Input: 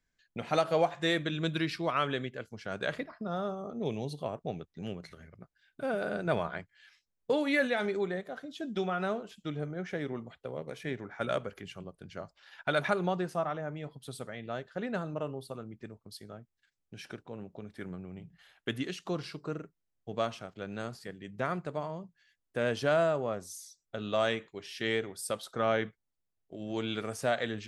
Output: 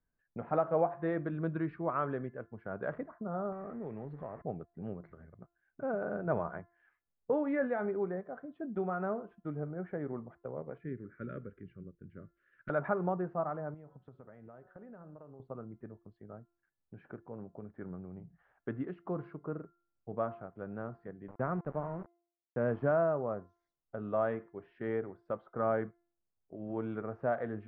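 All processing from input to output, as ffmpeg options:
-filter_complex "[0:a]asettb=1/sr,asplit=3[s0][s1][s2];[s0]atrim=end=3.524[s3];[s1]atrim=start=3.52:end=4.42,asetpts=PTS-STARTPTS,afade=t=in:d=0.004:c=qsin,afade=t=out:st=0.896:d=0.004:c=qsin,aeval=exprs='val(0)+0.5*0.00501*sgn(val(0))':c=same,equalizer=f=1900:t=o:w=0.72:g=13,acompressor=threshold=0.0126:ratio=2.5:attack=3.2:release=140:knee=1:detection=peak[s4];[s2]atrim=start=4.416[s5];[s3][s4]acrossfade=d=0.004:c1=hsin:c2=qsin[s6];[s6][s5]acrossfade=d=0.004:c1=qsin:c2=hsin,asettb=1/sr,asplit=3[s7][s8][s9];[s7]atrim=end=10.784[s10];[s8]atrim=start=10.78:end=12.7,asetpts=PTS-STARTPTS,afade=t=in:d=0.004:c=qsin,afade=t=out:st=1.916:d=0.004:c=qsin,highshelf=f=4900:g=-8.5,aeval=exprs='(mod(7.08*val(0)+1,2)-1)/7.08':c=same,asuperstop=centerf=820:order=4:qfactor=0.62[s11];[s9]atrim=start=12.696[s12];[s10][s11]acrossfade=d=0.004:c1=hsin:c2=qsin[s13];[s13][s12]acrossfade=d=0.004:c1=qsin:c2=hsin,asettb=1/sr,asplit=3[s14][s15][s16];[s14]atrim=end=13.744[s17];[s15]atrim=start=13.74:end=15.4,asetpts=PTS-STARTPTS,afade=t=in:d=0.004:c=qsin,afade=t=out:st=1.656:d=0.004:c=qsin,bandreject=f=184.8:t=h:w=4,bandreject=f=369.6:t=h:w=4,bandreject=f=554.4:t=h:w=4,bandreject=f=739.2:t=h:w=4,bandreject=f=924:t=h:w=4,bandreject=f=1108.8:t=h:w=4,bandreject=f=1293.6:t=h:w=4,bandreject=f=1478.4:t=h:w=4,bandreject=f=1663.2:t=h:w=4,acompressor=threshold=0.00562:ratio=12:attack=3.2:release=140:knee=1:detection=peak[s18];[s16]atrim=start=15.396[s19];[s17][s18]acrossfade=d=0.004:c1=hsin:c2=qsin[s20];[s20][s19]acrossfade=d=0.004:c1=qsin:c2=hsin,asettb=1/sr,asplit=3[s21][s22][s23];[s21]atrim=end=21.284[s24];[s22]atrim=start=21.28:end=22.91,asetpts=PTS-STARTPTS,afade=t=in:d=0.004:c=qsin,afade=t=out:st=1.626:d=0.004:c=qsin,highpass=f=78:p=1,equalizer=f=130:t=o:w=1.9:g=5.5,aeval=exprs='val(0)*gte(abs(val(0)),0.01)':c=same[s25];[s23]atrim=start=22.906[s26];[s24][s25]acrossfade=d=0.004:c1=hsin:c2=qsin[s27];[s27][s26]acrossfade=d=0.004:c1=qsin:c2=hsin,lowpass=f=1400:w=0.5412,lowpass=f=1400:w=1.3066,bandreject=f=344.6:t=h:w=4,bandreject=f=689.2:t=h:w=4,bandreject=f=1033.8:t=h:w=4,bandreject=f=1378.4:t=h:w=4,bandreject=f=1723:t=h:w=4,bandreject=f=2067.6:t=h:w=4,volume=0.794"

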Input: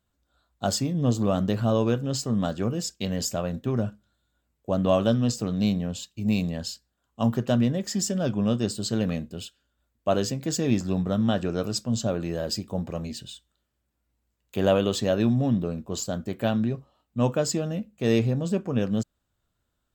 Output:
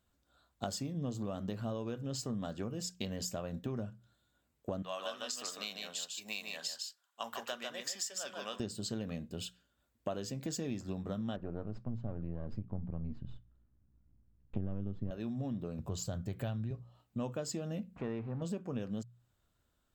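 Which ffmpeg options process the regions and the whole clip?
-filter_complex "[0:a]asettb=1/sr,asplit=3[s0][s1][s2];[s0]atrim=end=4.824[s3];[s1]atrim=start=4.82:end=8.6,asetpts=PTS-STARTPTS,afade=t=in:d=0.004:c=qsin,afade=t=out:st=3.776:d=0.004:c=qsin,highpass=1100,aecho=1:1:149:0.562,atrim=end_sample=166698[s4];[s2]atrim=start=8.596[s5];[s3][s4]acrossfade=d=0.004:c1=hsin:c2=qsin[s6];[s6][s5]acrossfade=d=0.004:c1=qsin:c2=hsin,asettb=1/sr,asplit=3[s7][s8][s9];[s7]atrim=end=11.364[s10];[s8]atrim=start=11.36:end=15.11,asetpts=PTS-STARTPTS,afade=t=in:d=0.004:c=qsin,afade=t=out:st=3.746:d=0.004:c=qsin,aeval=exprs='if(lt(val(0),0),0.447*val(0),val(0))':c=same,lowpass=1200,asubboost=boost=10:cutoff=210[s11];[s9]atrim=start=15.106[s12];[s10][s11]acrossfade=d=0.004:c1=hsin:c2=qsin[s13];[s13][s12]acrossfade=d=0.004:c1=qsin:c2=hsin,asettb=1/sr,asplit=3[s14][s15][s16];[s14]atrim=end=15.794[s17];[s15]atrim=start=15.79:end=16.71,asetpts=PTS-STARTPTS,afade=t=in:d=0.004:c=qsin,afade=t=out:st=0.916:d=0.004:c=qsin,lowshelf=f=170:t=q:w=1.5:g=9,acompressor=mode=upward:threshold=0.0398:ratio=2.5:attack=3.2:release=140:knee=2.83:detection=peak[s18];[s16]atrim=start=16.706[s19];[s17][s18]acrossfade=d=0.004:c1=hsin:c2=qsin[s20];[s20][s19]acrossfade=d=0.004:c1=qsin:c2=hsin,asettb=1/sr,asplit=3[s21][s22][s23];[s21]atrim=end=17.964[s24];[s22]atrim=start=17.96:end=18.42,asetpts=PTS-STARTPTS,afade=t=in:d=0.004:c=qsin,afade=t=out:st=0.456:d=0.004:c=qsin,aeval=exprs='val(0)+0.5*0.0141*sgn(val(0))':c=same,lowpass=1200,lowshelf=f=730:t=q:w=1.5:g=-6.5[s25];[s23]atrim=start=18.416[s26];[s24][s25]acrossfade=d=0.004:c1=hsin:c2=qsin[s27];[s27][s26]acrossfade=d=0.004:c1=qsin:c2=hsin,bandreject=f=60:t=h:w=6,bandreject=f=120:t=h:w=6,bandreject=f=180:t=h:w=6,acompressor=threshold=0.0158:ratio=6"

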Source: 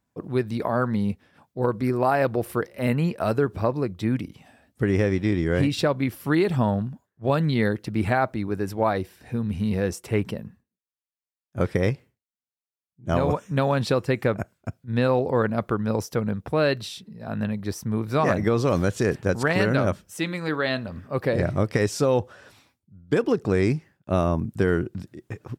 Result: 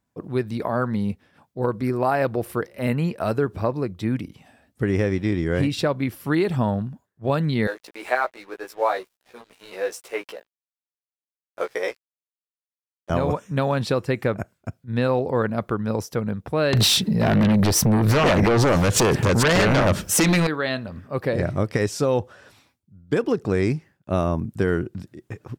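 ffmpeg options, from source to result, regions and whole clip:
-filter_complex "[0:a]asettb=1/sr,asplit=3[s0][s1][s2];[s0]atrim=end=7.674[s3];[s1]atrim=start=7.67:end=13.1,asetpts=PTS-STARTPTS,afade=t=in:d=0.004:c=qsin,afade=t=out:st=5.426:d=0.004:c=qsin,highpass=f=450:w=0.5412,highpass=f=450:w=1.3066,aeval=exprs='sgn(val(0))*max(abs(val(0))-0.00473,0)':c=same,asplit=2[s4][s5];[s5]adelay=16,volume=0.75[s6];[s4][s6]amix=inputs=2:normalize=0,atrim=end_sample=239463[s7];[s2]atrim=start=13.096[s8];[s3][s7]acrossfade=d=0.004:c1=hsin:c2=qsin[s9];[s9][s8]acrossfade=d=0.004:c1=qsin:c2=hsin,asettb=1/sr,asplit=3[s10][s11][s12];[s10]atrim=end=16.734[s13];[s11]atrim=start=16.73:end=20.47,asetpts=PTS-STARTPTS,afade=t=in:d=0.004:c=qsin,afade=t=out:st=3.736:d=0.004:c=qsin,acompressor=threshold=0.0251:ratio=4:attack=3.2:release=140:knee=1:detection=peak,aeval=exprs='0.211*sin(PI/2*7.94*val(0)/0.211)':c=same[s14];[s12]atrim=start=20.466[s15];[s13][s14]acrossfade=d=0.004:c1=hsin:c2=qsin[s16];[s16][s15]acrossfade=d=0.004:c1=qsin:c2=hsin"

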